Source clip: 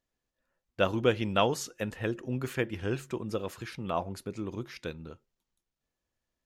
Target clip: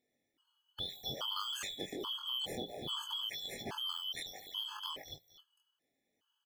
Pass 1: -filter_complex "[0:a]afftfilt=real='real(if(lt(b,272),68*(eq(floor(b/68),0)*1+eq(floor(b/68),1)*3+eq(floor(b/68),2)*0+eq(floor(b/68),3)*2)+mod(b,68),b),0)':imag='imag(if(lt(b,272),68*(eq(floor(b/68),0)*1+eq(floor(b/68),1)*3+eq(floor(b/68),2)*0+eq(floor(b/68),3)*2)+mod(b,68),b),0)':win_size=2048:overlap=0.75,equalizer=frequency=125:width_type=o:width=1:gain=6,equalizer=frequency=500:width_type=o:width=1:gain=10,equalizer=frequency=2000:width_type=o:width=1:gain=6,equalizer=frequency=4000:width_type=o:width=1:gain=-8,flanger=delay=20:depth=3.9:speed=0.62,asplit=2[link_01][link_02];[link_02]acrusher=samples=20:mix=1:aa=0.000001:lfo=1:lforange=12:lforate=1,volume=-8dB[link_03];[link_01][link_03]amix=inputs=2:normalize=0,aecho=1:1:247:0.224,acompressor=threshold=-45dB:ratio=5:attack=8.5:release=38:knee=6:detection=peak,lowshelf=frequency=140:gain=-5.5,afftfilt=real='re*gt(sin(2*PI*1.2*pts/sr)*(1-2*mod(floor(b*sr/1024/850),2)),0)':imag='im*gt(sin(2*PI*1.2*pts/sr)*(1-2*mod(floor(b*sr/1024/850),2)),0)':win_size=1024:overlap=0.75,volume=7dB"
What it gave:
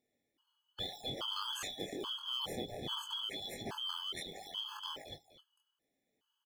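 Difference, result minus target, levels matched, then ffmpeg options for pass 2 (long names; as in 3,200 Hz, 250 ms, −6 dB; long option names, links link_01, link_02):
sample-and-hold swept by an LFO: distortion +17 dB
-filter_complex "[0:a]afftfilt=real='real(if(lt(b,272),68*(eq(floor(b/68),0)*1+eq(floor(b/68),1)*3+eq(floor(b/68),2)*0+eq(floor(b/68),3)*2)+mod(b,68),b),0)':imag='imag(if(lt(b,272),68*(eq(floor(b/68),0)*1+eq(floor(b/68),1)*3+eq(floor(b/68),2)*0+eq(floor(b/68),3)*2)+mod(b,68),b),0)':win_size=2048:overlap=0.75,equalizer=frequency=125:width_type=o:width=1:gain=6,equalizer=frequency=500:width_type=o:width=1:gain=10,equalizer=frequency=2000:width_type=o:width=1:gain=6,equalizer=frequency=4000:width_type=o:width=1:gain=-8,flanger=delay=20:depth=3.9:speed=0.62,asplit=2[link_01][link_02];[link_02]acrusher=samples=4:mix=1:aa=0.000001:lfo=1:lforange=2.4:lforate=1,volume=-8dB[link_03];[link_01][link_03]amix=inputs=2:normalize=0,aecho=1:1:247:0.224,acompressor=threshold=-45dB:ratio=5:attack=8.5:release=38:knee=6:detection=peak,lowshelf=frequency=140:gain=-5.5,afftfilt=real='re*gt(sin(2*PI*1.2*pts/sr)*(1-2*mod(floor(b*sr/1024/850),2)),0)':imag='im*gt(sin(2*PI*1.2*pts/sr)*(1-2*mod(floor(b*sr/1024/850),2)),0)':win_size=1024:overlap=0.75,volume=7dB"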